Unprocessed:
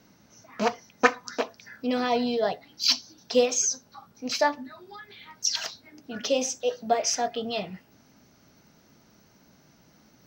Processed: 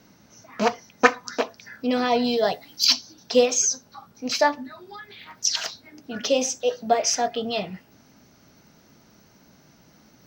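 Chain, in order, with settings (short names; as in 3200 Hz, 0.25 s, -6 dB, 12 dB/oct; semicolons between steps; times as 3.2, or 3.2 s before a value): 2.24–2.85 high shelf 5300 Hz +12 dB; 5.17–5.65 Doppler distortion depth 0.21 ms; gain +3.5 dB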